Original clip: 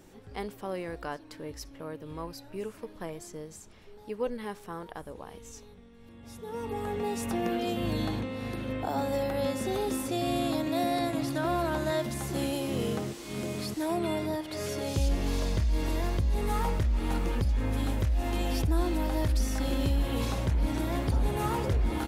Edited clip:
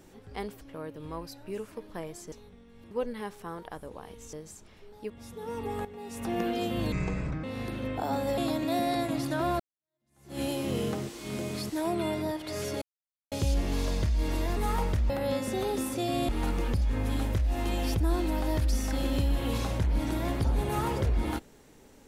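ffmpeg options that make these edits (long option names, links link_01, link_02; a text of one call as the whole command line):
ffmpeg -i in.wav -filter_complex "[0:a]asplit=15[link_01][link_02][link_03][link_04][link_05][link_06][link_07][link_08][link_09][link_10][link_11][link_12][link_13][link_14][link_15];[link_01]atrim=end=0.612[link_16];[link_02]atrim=start=1.668:end=3.382[link_17];[link_03]atrim=start=5.568:end=6.162[link_18];[link_04]atrim=start=4.148:end=5.572[link_19];[link_05]atrim=start=3.378:end=4.152[link_20];[link_06]atrim=start=6.158:end=6.91,asetpts=PTS-STARTPTS,afade=type=out:start_time=0.748:duration=0.004:curve=hsin:silence=0.211349[link_21];[link_07]atrim=start=6.91:end=7.984,asetpts=PTS-STARTPTS,afade=type=in:duration=0.5:curve=qua:silence=0.211349[link_22];[link_08]atrim=start=7.98:end=8.29,asetpts=PTS-STARTPTS,asetrate=26460,aresample=44100[link_23];[link_09]atrim=start=8.286:end=9.232[link_24];[link_10]atrim=start=10.418:end=11.64,asetpts=PTS-STARTPTS,afade=type=out:start_time=1.218:duration=0.004:curve=hsin[link_25];[link_11]atrim=start=11.64:end=14.86,asetpts=PTS-STARTPTS,afade=type=in:duration=0.82:curve=exp,afade=type=out:start_time=3.216:duration=0.004:curve=hsin,apad=pad_dur=0.5[link_26];[link_12]atrim=start=14.86:end=16.112,asetpts=PTS-STARTPTS,afade=type=in:duration=0.004:curve=hsin[link_27];[link_13]atrim=start=16.428:end=16.962[link_28];[link_14]atrim=start=9.228:end=10.422[link_29];[link_15]atrim=start=16.958[link_30];[link_16][link_17]acrossfade=duration=0.004:curve1=hsin:curve2=hsin[link_31];[link_31][link_18]acrossfade=duration=0.004:curve1=hsin:curve2=hsin[link_32];[link_32][link_19]acrossfade=duration=0.004:curve1=hsin:curve2=hsin[link_33];[link_33][link_20]acrossfade=duration=0.004:curve1=hsin:curve2=hsin[link_34];[link_21][link_22]concat=n=2:v=0:a=1[link_35];[link_34][link_35]acrossfade=duration=0.004:curve1=hsin:curve2=hsin[link_36];[link_36][link_23]acrossfade=duration=0.004:curve1=hsin:curve2=hsin[link_37];[link_37][link_24]acrossfade=duration=0.004:curve1=hsin:curve2=hsin[link_38];[link_25][link_26][link_27]concat=n=3:v=0:a=1[link_39];[link_38][link_39]acrossfade=duration=0.004:curve1=hsin:curve2=hsin[link_40];[link_40][link_28]acrossfade=duration=0.004:curve1=hsin:curve2=hsin[link_41];[link_41][link_29]acrossfade=duration=0.004:curve1=hsin:curve2=hsin[link_42];[link_42][link_30]acrossfade=duration=0.004:curve1=hsin:curve2=hsin" out.wav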